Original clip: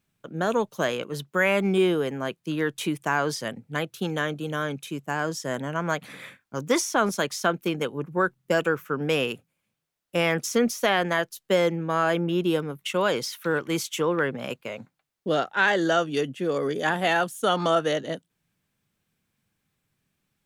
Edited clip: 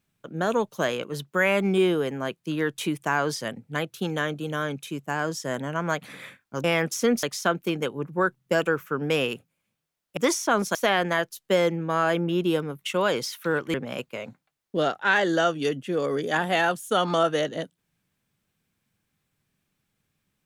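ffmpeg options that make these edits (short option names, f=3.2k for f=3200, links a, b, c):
-filter_complex "[0:a]asplit=6[a][b][c][d][e][f];[a]atrim=end=6.642[g];[b]atrim=start=10.158:end=10.752[h];[c]atrim=start=7.218:end=10.162[i];[d]atrim=start=6.638:end=7.222[j];[e]atrim=start=10.748:end=13.742[k];[f]atrim=start=14.258[l];[g][h]acrossfade=d=0.004:c1=hsin:c2=hsin[m];[m][i]acrossfade=d=0.004:c1=hsin:c2=hsin[n];[n][j]acrossfade=d=0.004:c1=hsin:c2=hsin[o];[o][k]acrossfade=d=0.004:c1=hsin:c2=hsin[p];[p][l]acrossfade=d=0.004:c1=hsin:c2=hsin"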